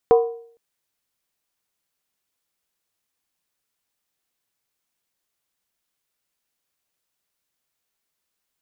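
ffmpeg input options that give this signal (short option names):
-f lavfi -i "aevalsrc='0.398*pow(10,-3*t/0.56)*sin(2*PI*464*t)+0.158*pow(10,-3*t/0.444)*sin(2*PI*739.6*t)+0.0631*pow(10,-3*t/0.383)*sin(2*PI*991.1*t)+0.0251*pow(10,-3*t/0.37)*sin(2*PI*1065.3*t)+0.01*pow(10,-3*t/0.344)*sin(2*PI*1231*t)':d=0.46:s=44100"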